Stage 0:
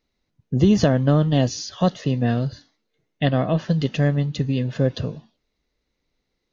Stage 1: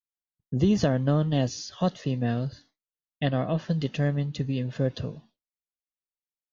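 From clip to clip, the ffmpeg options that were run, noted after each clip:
ffmpeg -i in.wav -af "agate=range=-33dB:threshold=-46dB:ratio=3:detection=peak,volume=-6dB" out.wav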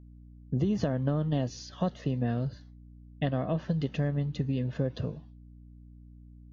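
ffmpeg -i in.wav -af "highshelf=frequency=2900:gain=-9.5,acompressor=threshold=-24dB:ratio=6,aeval=exprs='val(0)+0.00355*(sin(2*PI*60*n/s)+sin(2*PI*2*60*n/s)/2+sin(2*PI*3*60*n/s)/3+sin(2*PI*4*60*n/s)/4+sin(2*PI*5*60*n/s)/5)':channel_layout=same" out.wav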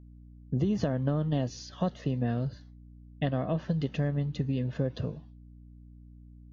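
ffmpeg -i in.wav -af anull out.wav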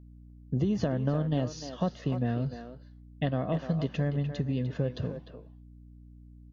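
ffmpeg -i in.wav -filter_complex "[0:a]asplit=2[link_01][link_02];[link_02]adelay=300,highpass=300,lowpass=3400,asoftclip=type=hard:threshold=-24dB,volume=-8dB[link_03];[link_01][link_03]amix=inputs=2:normalize=0" out.wav

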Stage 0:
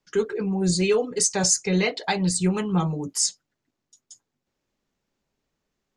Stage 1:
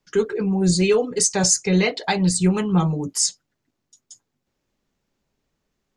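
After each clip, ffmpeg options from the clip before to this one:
ffmpeg -i in.wav -af "lowshelf=frequency=200:gain=3.5,volume=2.5dB" out.wav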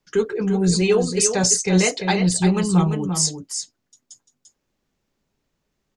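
ffmpeg -i in.wav -af "aecho=1:1:344:0.422" out.wav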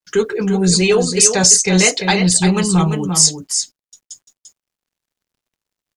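ffmpeg -i in.wav -af "apsyclip=11dB,tiltshelf=frequency=1400:gain=-3,acrusher=bits=8:mix=0:aa=0.5,volume=-4.5dB" out.wav

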